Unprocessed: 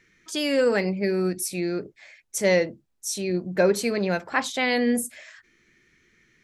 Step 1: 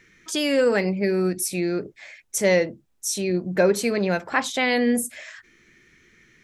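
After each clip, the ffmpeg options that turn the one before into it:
-filter_complex "[0:a]equalizer=f=4.5k:w=5.5:g=-2.5,asplit=2[a][b];[b]acompressor=threshold=-33dB:ratio=6,volume=-0.5dB[c];[a][c]amix=inputs=2:normalize=0"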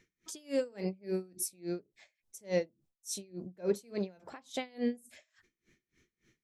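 -af "equalizer=f=1.7k:w=0.96:g=-8,aeval=exprs='val(0)*pow(10,-28*(0.5-0.5*cos(2*PI*3.5*n/s))/20)':c=same,volume=-7.5dB"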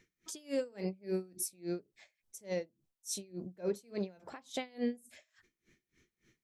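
-af "alimiter=level_in=0.5dB:limit=-24dB:level=0:latency=1:release=465,volume=-0.5dB"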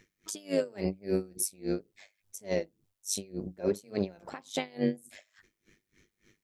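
-af "tremolo=f=100:d=0.75,volume=9dB"

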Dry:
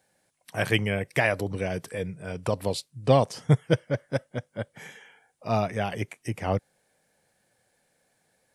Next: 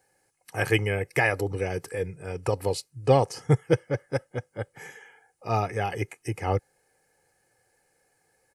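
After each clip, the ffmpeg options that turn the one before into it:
-af "equalizer=f=3.5k:w=4.1:g=-11,aecho=1:1:2.4:0.59"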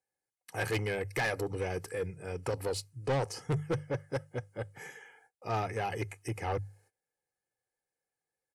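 -af "bandreject=f=50:t=h:w=6,bandreject=f=100:t=h:w=6,bandreject=f=150:t=h:w=6,asoftclip=type=tanh:threshold=-23dB,agate=range=-20dB:threshold=-60dB:ratio=16:detection=peak,volume=-3dB"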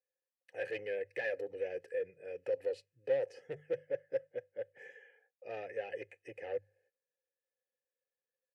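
-filter_complex "[0:a]asplit=3[a][b][c];[a]bandpass=f=530:t=q:w=8,volume=0dB[d];[b]bandpass=f=1.84k:t=q:w=8,volume=-6dB[e];[c]bandpass=f=2.48k:t=q:w=8,volume=-9dB[f];[d][e][f]amix=inputs=3:normalize=0,volume=3.5dB"

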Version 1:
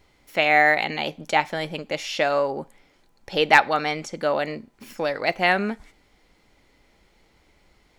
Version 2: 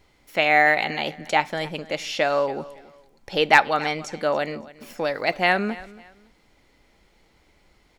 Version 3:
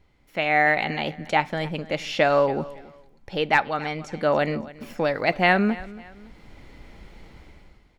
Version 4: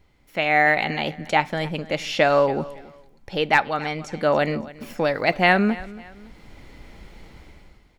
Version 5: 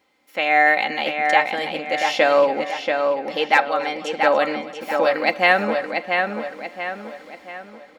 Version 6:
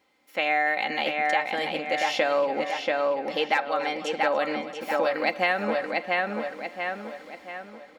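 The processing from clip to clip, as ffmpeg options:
-af "aecho=1:1:280|560:0.106|0.0297"
-af "bass=f=250:g=7,treble=f=4k:g=-7,dynaudnorm=f=130:g=9:m=16dB,volume=-5.5dB"
-af "highshelf=f=5.8k:g=4.5,volume=1.5dB"
-filter_complex "[0:a]highpass=360,aecho=1:1:3.8:0.46,asplit=2[a][b];[b]adelay=684,lowpass=f=4.2k:p=1,volume=-4.5dB,asplit=2[c][d];[d]adelay=684,lowpass=f=4.2k:p=1,volume=0.45,asplit=2[e][f];[f]adelay=684,lowpass=f=4.2k:p=1,volume=0.45,asplit=2[g][h];[h]adelay=684,lowpass=f=4.2k:p=1,volume=0.45,asplit=2[i][j];[j]adelay=684,lowpass=f=4.2k:p=1,volume=0.45,asplit=2[k][l];[l]adelay=684,lowpass=f=4.2k:p=1,volume=0.45[m];[c][e][g][i][k][m]amix=inputs=6:normalize=0[n];[a][n]amix=inputs=2:normalize=0,volume=1dB"
-af "acompressor=threshold=-18dB:ratio=4,volume=-2.5dB"

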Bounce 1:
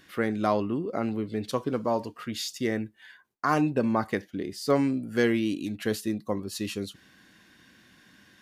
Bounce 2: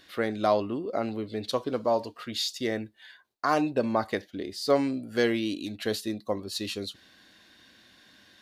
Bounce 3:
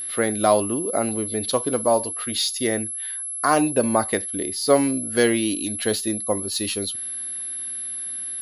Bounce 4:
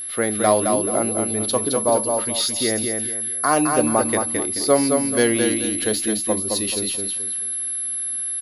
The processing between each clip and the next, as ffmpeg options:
-af "equalizer=f=160:t=o:w=0.67:g=-7,equalizer=f=630:t=o:w=0.67:g=6,equalizer=f=4k:t=o:w=0.67:g=9,volume=-2dB"
-af "aeval=exprs='val(0)+0.02*sin(2*PI*11000*n/s)':c=same,volume=6dB"
-af "aecho=1:1:216|432|648|864:0.596|0.191|0.061|0.0195"

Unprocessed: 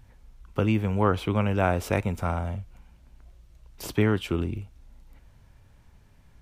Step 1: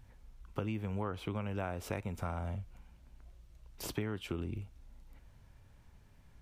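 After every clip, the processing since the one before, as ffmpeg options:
-af "acompressor=threshold=-29dB:ratio=6,volume=-4.5dB"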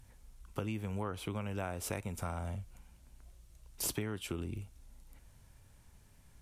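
-af "equalizer=f=9.9k:w=0.62:g=13,volume=-1dB"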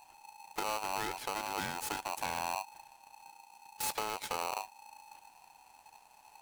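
-af "aeval=exprs='0.075*(cos(1*acos(clip(val(0)/0.075,-1,1)))-cos(1*PI/2))+0.0119*(cos(5*acos(clip(val(0)/0.075,-1,1)))-cos(5*PI/2))+0.0237*(cos(8*acos(clip(val(0)/0.075,-1,1)))-cos(8*PI/2))':c=same,aeval=exprs='val(0)*sgn(sin(2*PI*860*n/s))':c=same,volume=-5dB"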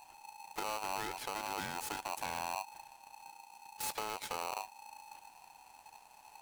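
-af "alimiter=level_in=7dB:limit=-24dB:level=0:latency=1:release=141,volume=-7dB,volume=1.5dB"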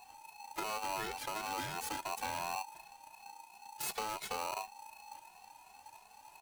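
-filter_complex "[0:a]asplit=2[a][b];[b]adelay=2.3,afreqshift=2.8[c];[a][c]amix=inputs=2:normalize=1,volume=3.5dB"

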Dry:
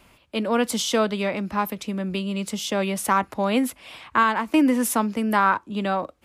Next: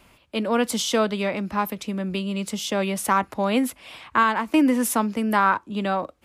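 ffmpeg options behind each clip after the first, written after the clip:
-af anull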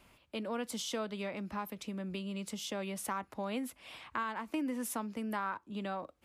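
-af "acompressor=threshold=-32dB:ratio=2,volume=-8dB"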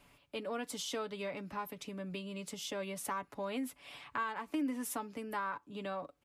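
-af "aecho=1:1:7:0.54,volume=-2dB"

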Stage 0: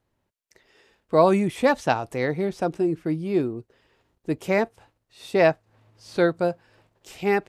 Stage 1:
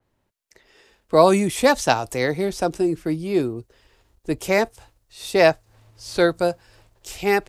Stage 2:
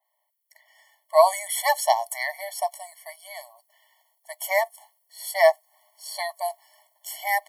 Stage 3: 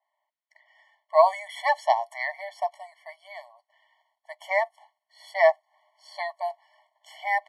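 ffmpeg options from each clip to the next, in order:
-filter_complex "[0:a]asubboost=boost=7:cutoff=63,acrossover=split=140|1100|4300[a][b][c][d];[d]dynaudnorm=f=570:g=3:m=6.5dB[e];[a][b][c][e]amix=inputs=4:normalize=0,adynamicequalizer=threshold=0.0112:dfrequency=3700:dqfactor=0.7:tfrequency=3700:tqfactor=0.7:attack=5:release=100:ratio=0.375:range=2.5:mode=boostabove:tftype=highshelf,volume=3.5dB"
-af "aexciter=amount=3.8:drive=5.9:freq=9.3k,afftfilt=real='re*eq(mod(floor(b*sr/1024/580),2),1)':imag='im*eq(mod(floor(b*sr/1024/580),2),1)':win_size=1024:overlap=0.75"
-af "highpass=550,lowpass=2.7k"

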